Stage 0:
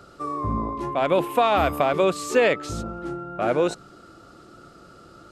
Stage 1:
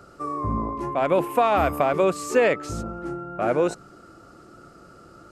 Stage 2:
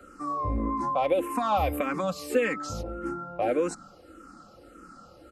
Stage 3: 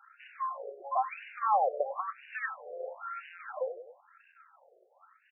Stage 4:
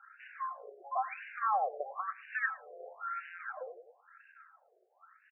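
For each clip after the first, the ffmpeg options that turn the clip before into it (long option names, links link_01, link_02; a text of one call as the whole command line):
ffmpeg -i in.wav -af "equalizer=frequency=3600:width=2:gain=-8" out.wav
ffmpeg -i in.wav -filter_complex "[0:a]aecho=1:1:3.8:0.59,acrossover=split=180|3000[link_01][link_02][link_03];[link_02]acompressor=threshold=-20dB:ratio=6[link_04];[link_01][link_04][link_03]amix=inputs=3:normalize=0,asplit=2[link_05][link_06];[link_06]afreqshift=-1.7[link_07];[link_05][link_07]amix=inputs=2:normalize=1" out.wav
ffmpeg -i in.wav -filter_complex "[0:a]acrusher=bits=7:dc=4:mix=0:aa=0.000001,asplit=2[link_01][link_02];[link_02]adelay=99,lowpass=frequency=4900:poles=1,volume=-16dB,asplit=2[link_03][link_04];[link_04]adelay=99,lowpass=frequency=4900:poles=1,volume=0.52,asplit=2[link_05][link_06];[link_06]adelay=99,lowpass=frequency=4900:poles=1,volume=0.52,asplit=2[link_07][link_08];[link_08]adelay=99,lowpass=frequency=4900:poles=1,volume=0.52,asplit=2[link_09][link_10];[link_10]adelay=99,lowpass=frequency=4900:poles=1,volume=0.52[link_11];[link_01][link_03][link_05][link_07][link_09][link_11]amix=inputs=6:normalize=0,afftfilt=real='re*between(b*sr/1024,510*pow(2100/510,0.5+0.5*sin(2*PI*0.99*pts/sr))/1.41,510*pow(2100/510,0.5+0.5*sin(2*PI*0.99*pts/sr))*1.41)':imag='im*between(b*sr/1024,510*pow(2100/510,0.5+0.5*sin(2*PI*0.99*pts/sr))/1.41,510*pow(2100/510,0.5+0.5*sin(2*PI*0.99*pts/sr))*1.41)':win_size=1024:overlap=0.75" out.wav
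ffmpeg -i in.wav -af "highpass=400,equalizer=frequency=540:width_type=q:width=4:gain=-10,equalizer=frequency=930:width_type=q:width=4:gain=-8,equalizer=frequency=1600:width_type=q:width=4:gain=6,lowpass=frequency=2500:width=0.5412,lowpass=frequency=2500:width=1.3066,aecho=1:1:112:0.0668" out.wav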